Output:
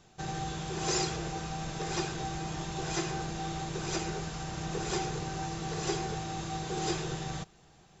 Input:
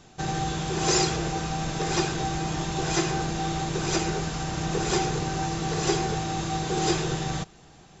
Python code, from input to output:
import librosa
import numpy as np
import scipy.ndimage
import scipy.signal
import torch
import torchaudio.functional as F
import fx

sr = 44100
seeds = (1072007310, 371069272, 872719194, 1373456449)

y = fx.peak_eq(x, sr, hz=270.0, db=-6.5, octaves=0.24)
y = y * librosa.db_to_amplitude(-7.5)